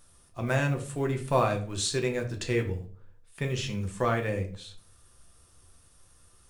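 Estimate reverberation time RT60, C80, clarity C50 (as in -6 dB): 0.45 s, 16.0 dB, 11.5 dB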